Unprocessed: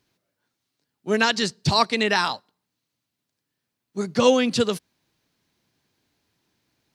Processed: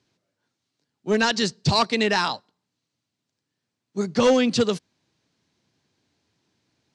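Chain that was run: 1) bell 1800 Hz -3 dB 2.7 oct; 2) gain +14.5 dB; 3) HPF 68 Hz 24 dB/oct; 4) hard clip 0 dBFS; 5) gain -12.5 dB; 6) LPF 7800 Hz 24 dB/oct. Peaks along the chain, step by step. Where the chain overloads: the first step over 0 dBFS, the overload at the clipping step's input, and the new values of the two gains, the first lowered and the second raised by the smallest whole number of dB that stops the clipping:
-5.5, +9.0, +8.5, 0.0, -12.5, -11.0 dBFS; step 2, 8.5 dB; step 2 +5.5 dB, step 5 -3.5 dB

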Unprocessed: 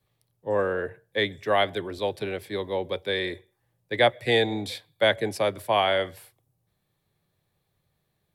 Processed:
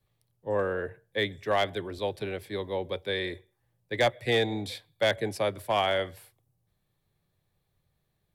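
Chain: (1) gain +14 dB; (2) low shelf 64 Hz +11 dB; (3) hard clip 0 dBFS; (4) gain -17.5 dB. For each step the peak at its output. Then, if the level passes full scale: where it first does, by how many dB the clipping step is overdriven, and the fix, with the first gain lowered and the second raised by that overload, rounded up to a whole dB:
+6.0, +6.0, 0.0, -17.5 dBFS; step 1, 6.0 dB; step 1 +8 dB, step 4 -11.5 dB

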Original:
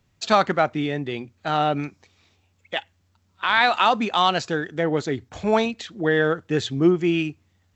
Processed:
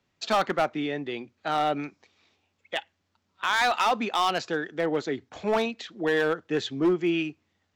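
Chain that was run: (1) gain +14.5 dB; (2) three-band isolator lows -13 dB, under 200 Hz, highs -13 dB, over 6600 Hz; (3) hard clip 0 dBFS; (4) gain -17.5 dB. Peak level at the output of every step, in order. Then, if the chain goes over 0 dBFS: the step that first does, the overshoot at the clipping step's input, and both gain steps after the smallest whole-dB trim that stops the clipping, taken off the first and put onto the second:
+10.0, +9.5, 0.0, -17.5 dBFS; step 1, 9.5 dB; step 1 +4.5 dB, step 4 -7.5 dB

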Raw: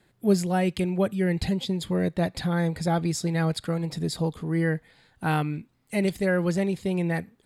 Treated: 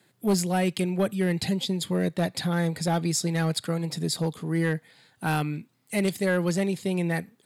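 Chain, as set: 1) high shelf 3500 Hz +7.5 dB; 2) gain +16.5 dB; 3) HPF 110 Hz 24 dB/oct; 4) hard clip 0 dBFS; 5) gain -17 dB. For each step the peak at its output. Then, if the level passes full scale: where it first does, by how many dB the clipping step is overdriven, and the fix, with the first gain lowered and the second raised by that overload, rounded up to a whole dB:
-9.5, +7.0, +7.0, 0.0, -17.0 dBFS; step 2, 7.0 dB; step 2 +9.5 dB, step 5 -10 dB

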